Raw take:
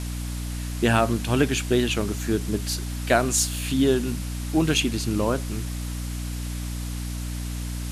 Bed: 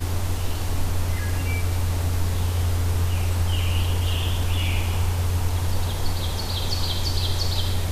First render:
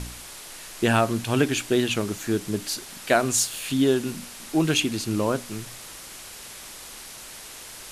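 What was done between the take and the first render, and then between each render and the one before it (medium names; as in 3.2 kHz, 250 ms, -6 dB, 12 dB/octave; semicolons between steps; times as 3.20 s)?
de-hum 60 Hz, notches 5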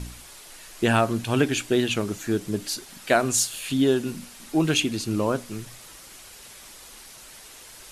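noise reduction 6 dB, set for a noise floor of -42 dBFS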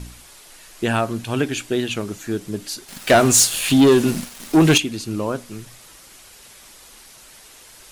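2.88–4.78 s: waveshaping leveller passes 3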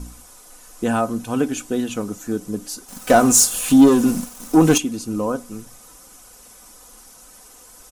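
high-order bell 2.8 kHz -9.5 dB; comb 4 ms, depth 53%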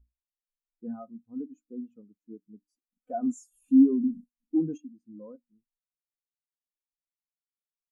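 peak limiter -10.5 dBFS, peak gain reduction 7 dB; spectral contrast expander 2.5:1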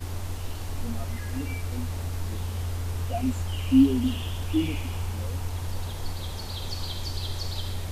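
add bed -8 dB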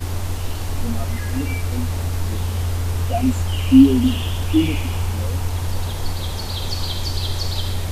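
trim +8.5 dB; peak limiter -1 dBFS, peak gain reduction 1 dB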